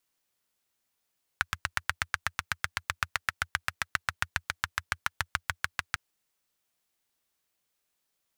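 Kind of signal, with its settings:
pulse-train model of a single-cylinder engine, changing speed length 4.55 s, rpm 1,000, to 800, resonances 86/1,500 Hz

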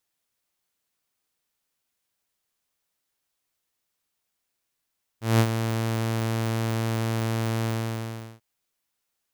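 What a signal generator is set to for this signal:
note with an ADSR envelope saw 113 Hz, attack 184 ms, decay 67 ms, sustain −9 dB, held 2.45 s, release 741 ms −12.5 dBFS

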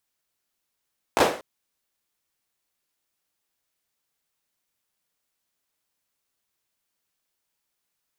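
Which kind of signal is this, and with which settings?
synth clap length 0.24 s, bursts 3, apart 16 ms, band 520 Hz, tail 0.42 s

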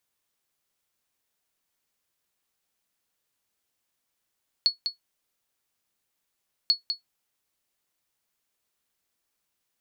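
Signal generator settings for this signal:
ping with an echo 4,380 Hz, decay 0.13 s, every 2.04 s, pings 2, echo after 0.20 s, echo −7.5 dB −12 dBFS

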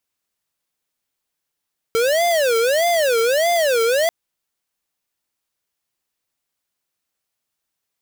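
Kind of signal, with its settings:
siren wail 452–696 Hz 1.6 per second square −17 dBFS 2.14 s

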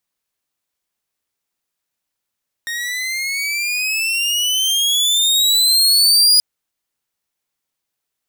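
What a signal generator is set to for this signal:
pitch glide with a swell saw, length 3.73 s, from 1,850 Hz, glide +17 semitones, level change +14 dB, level −5 dB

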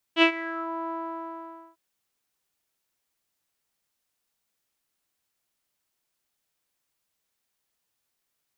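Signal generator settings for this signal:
subtractive voice saw E4 12 dB per octave, low-pass 1,100 Hz, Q 6.1, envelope 1.5 octaves, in 0.53 s, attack 62 ms, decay 0.09 s, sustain −18 dB, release 0.86 s, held 0.74 s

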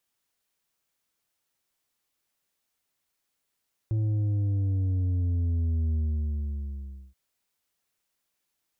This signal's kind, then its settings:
bass drop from 110 Hz, over 3.23 s, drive 6 dB, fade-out 1.20 s, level −24 dB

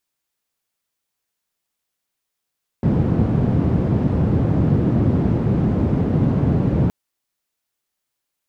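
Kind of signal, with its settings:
band-limited noise 100–160 Hz, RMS −17.5 dBFS 4.07 s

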